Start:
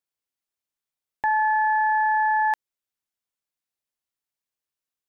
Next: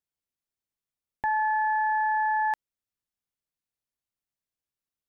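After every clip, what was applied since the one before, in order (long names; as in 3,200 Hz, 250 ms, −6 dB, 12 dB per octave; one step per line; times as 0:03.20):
low-shelf EQ 270 Hz +10.5 dB
level −5 dB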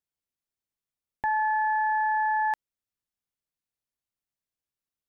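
no processing that can be heard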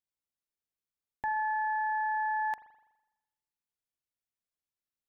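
spring reverb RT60 1 s, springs 41 ms, chirp 60 ms, DRR 13 dB
level −5.5 dB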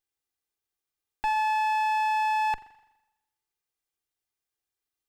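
lower of the sound and its delayed copy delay 2.5 ms
level +6 dB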